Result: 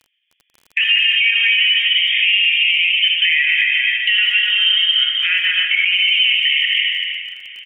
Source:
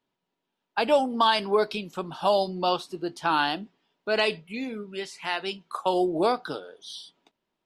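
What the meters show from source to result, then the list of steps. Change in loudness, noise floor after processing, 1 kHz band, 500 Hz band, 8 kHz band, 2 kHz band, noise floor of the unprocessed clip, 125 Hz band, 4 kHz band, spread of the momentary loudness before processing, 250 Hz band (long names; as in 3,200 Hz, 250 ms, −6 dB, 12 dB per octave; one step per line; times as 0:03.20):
+13.5 dB, −69 dBFS, below −15 dB, below −40 dB, can't be measured, +20.0 dB, −83 dBFS, below −30 dB, +21.5 dB, 14 LU, below −40 dB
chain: feedback delay that plays each chunk backwards 126 ms, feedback 44%, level −3 dB
voice inversion scrambler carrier 3,400 Hz
noise gate −42 dBFS, range −14 dB
downward compressor 12 to 1, threshold −31 dBFS, peak gain reduction 16.5 dB
treble cut that deepens with the level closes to 2,400 Hz, closed at −36 dBFS
elliptic high-pass filter 1,900 Hz, stop band 70 dB
repeating echo 684 ms, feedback 53%, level −20.5 dB
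reverb whose tail is shaped and stops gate 420 ms flat, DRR 1.5 dB
surface crackle 26 per second −57 dBFS
boost into a limiter +30 dB
level −5 dB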